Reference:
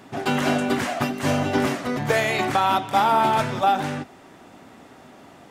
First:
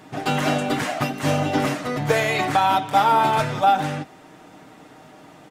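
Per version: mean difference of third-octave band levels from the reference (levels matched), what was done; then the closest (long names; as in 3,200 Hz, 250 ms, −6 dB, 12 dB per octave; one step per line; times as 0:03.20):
1.0 dB: comb filter 6.5 ms, depth 49%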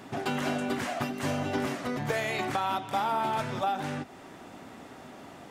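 3.5 dB: downward compressor 2 to 1, threshold −34 dBFS, peak gain reduction 10.5 dB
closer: first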